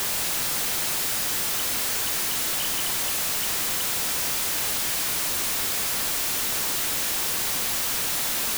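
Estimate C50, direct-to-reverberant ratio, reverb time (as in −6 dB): 10.0 dB, 9.0 dB, 2.2 s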